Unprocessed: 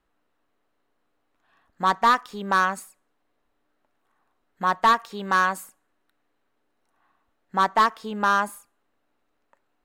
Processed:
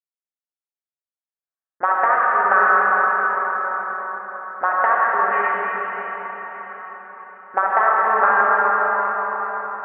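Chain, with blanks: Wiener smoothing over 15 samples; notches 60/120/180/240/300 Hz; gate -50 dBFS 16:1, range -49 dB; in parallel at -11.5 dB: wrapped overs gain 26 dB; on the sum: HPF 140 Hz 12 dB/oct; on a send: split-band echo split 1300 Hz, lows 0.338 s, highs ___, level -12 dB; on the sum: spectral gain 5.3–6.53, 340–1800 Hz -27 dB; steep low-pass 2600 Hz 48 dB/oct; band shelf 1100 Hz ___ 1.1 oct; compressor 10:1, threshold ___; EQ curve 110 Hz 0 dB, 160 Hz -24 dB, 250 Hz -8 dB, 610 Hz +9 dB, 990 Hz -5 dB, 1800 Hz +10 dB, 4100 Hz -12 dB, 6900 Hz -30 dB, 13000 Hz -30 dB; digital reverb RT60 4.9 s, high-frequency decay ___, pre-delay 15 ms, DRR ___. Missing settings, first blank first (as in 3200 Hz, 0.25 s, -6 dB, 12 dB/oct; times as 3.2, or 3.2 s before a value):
0.136 s, +9.5 dB, -16 dBFS, 0.85×, -5 dB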